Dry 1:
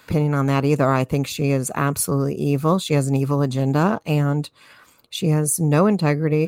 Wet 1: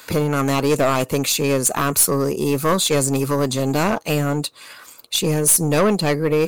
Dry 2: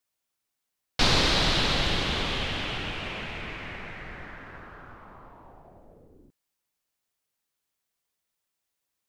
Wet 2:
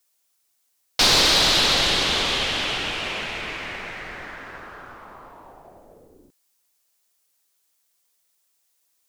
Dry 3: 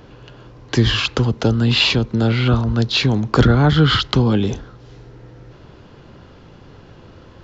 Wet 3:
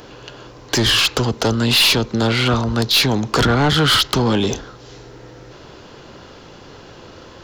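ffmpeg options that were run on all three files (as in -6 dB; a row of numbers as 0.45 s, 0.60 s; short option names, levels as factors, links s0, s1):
-af "bass=f=250:g=-9,treble=f=4000:g=8,aeval=exprs='(tanh(7.08*val(0)+0.1)-tanh(0.1))/7.08':c=same,volume=2.11"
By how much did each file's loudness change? +1.5 LU, +7.0 LU, +0.5 LU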